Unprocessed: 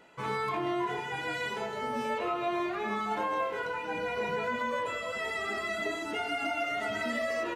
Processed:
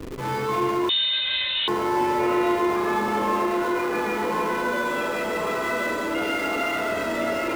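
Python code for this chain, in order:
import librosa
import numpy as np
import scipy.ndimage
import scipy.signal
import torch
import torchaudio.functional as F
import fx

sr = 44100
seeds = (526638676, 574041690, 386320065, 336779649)

p1 = fx.cheby1_highpass(x, sr, hz=150.0, order=5, at=(3.18, 5.14))
p2 = fx.rev_fdn(p1, sr, rt60_s=2.2, lf_ratio=1.05, hf_ratio=0.4, size_ms=17.0, drr_db=-6.0)
p3 = fx.dmg_noise_band(p2, sr, seeds[0], low_hz=220.0, high_hz=490.0, level_db=-39.0)
p4 = fx.echo_filtered(p3, sr, ms=1065, feedback_pct=38, hz=2400.0, wet_db=-3.0)
p5 = fx.schmitt(p4, sr, flips_db=-36.0)
p6 = p4 + (p5 * librosa.db_to_amplitude(-10.0))
p7 = fx.freq_invert(p6, sr, carrier_hz=4000, at=(0.89, 1.68))
y = p7 * librosa.db_to_amplitude(-3.0)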